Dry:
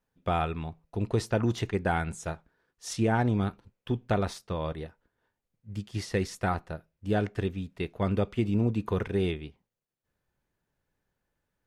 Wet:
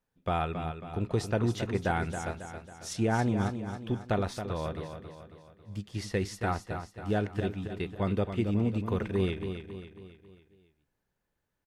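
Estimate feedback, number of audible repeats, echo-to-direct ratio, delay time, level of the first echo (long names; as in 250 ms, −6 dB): 48%, 5, −7.5 dB, 273 ms, −8.5 dB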